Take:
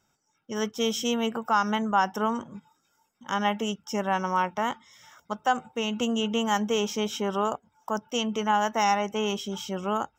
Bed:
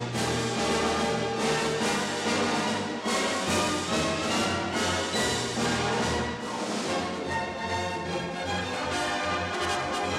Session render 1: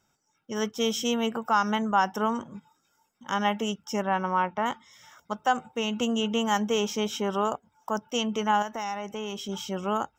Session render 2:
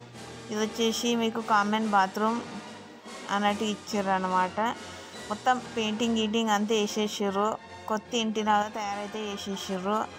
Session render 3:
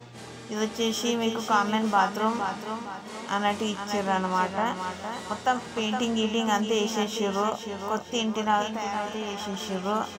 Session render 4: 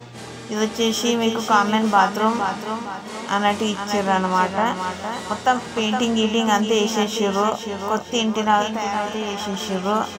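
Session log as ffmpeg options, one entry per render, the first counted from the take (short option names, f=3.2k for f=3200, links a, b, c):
-filter_complex "[0:a]asettb=1/sr,asplit=3[a][b][c];[a]atrim=end=4.024[d];[b]atrim=start=4.02:end=4.66,asetpts=PTS-STARTPTS,afade=t=in:d=0.004:c=qsin,afade=t=out:st=0.636:d=0.004:c=qsin,lowpass=2.9k[e];[c]atrim=start=4.656[f];[d][e]acrossfade=d=0.004:c1=hsin:c2=qsin[g];[g][f]acrossfade=d=0.004:c1=qsin:c2=hsin,asettb=1/sr,asplit=3[h][i][j];[h]atrim=end=8.624[k];[i]atrim=start=8.62:end=9.49,asetpts=PTS-STARTPTS,afade=t=in:d=0.004:c=qsin,afade=t=out:st=0.866:d=0.004:c=qsin,acompressor=threshold=-33dB:ratio=2.5:attack=3.2:release=140:knee=1:detection=peak[l];[j]atrim=start=9.486[m];[k][l]acrossfade=d=0.004:c1=hsin:c2=qsin[n];[n][m]acrossfade=d=0.004:c1=qsin:c2=hsin"
-filter_complex "[1:a]volume=-15dB[a];[0:a][a]amix=inputs=2:normalize=0"
-filter_complex "[0:a]asplit=2[a][b];[b]adelay=32,volume=-12dB[c];[a][c]amix=inputs=2:normalize=0,aecho=1:1:462|924|1386|1848:0.398|0.155|0.0606|0.0236"
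-af "volume=6.5dB"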